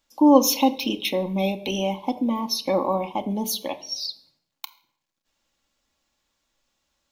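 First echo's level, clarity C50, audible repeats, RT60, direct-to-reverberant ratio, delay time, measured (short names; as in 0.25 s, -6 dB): none, 16.0 dB, none, 0.70 s, 6.5 dB, none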